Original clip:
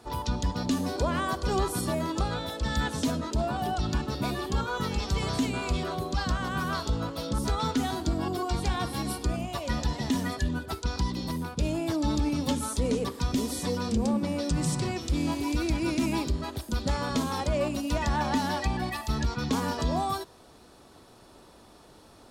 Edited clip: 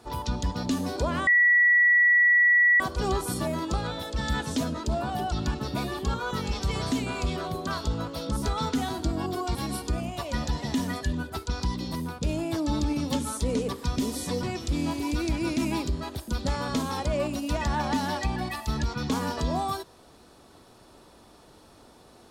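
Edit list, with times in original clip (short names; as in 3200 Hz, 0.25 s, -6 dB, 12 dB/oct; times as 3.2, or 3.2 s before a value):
1.27 add tone 1940 Hz -16 dBFS 1.53 s
6.14–6.69 cut
8.57–8.91 cut
13.79–14.84 cut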